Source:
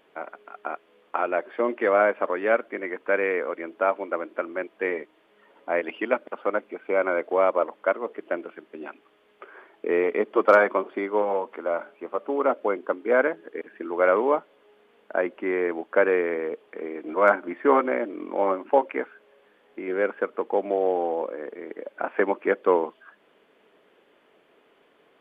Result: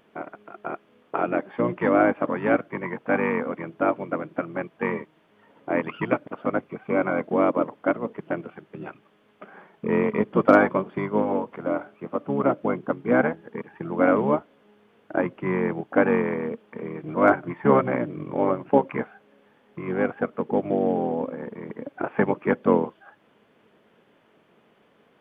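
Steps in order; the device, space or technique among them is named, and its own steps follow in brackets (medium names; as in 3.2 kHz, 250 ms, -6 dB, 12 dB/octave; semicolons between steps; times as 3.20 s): octave pedal (harmony voices -12 st -2 dB); trim -1.5 dB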